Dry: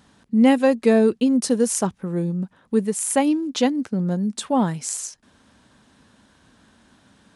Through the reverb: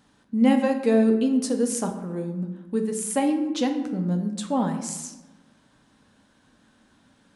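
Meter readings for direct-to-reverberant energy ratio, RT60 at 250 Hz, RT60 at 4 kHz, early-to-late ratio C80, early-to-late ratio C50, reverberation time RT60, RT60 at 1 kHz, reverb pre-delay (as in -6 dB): 4.5 dB, 1.5 s, 0.65 s, 10.0 dB, 8.0 dB, 1.1 s, 1.1 s, 3 ms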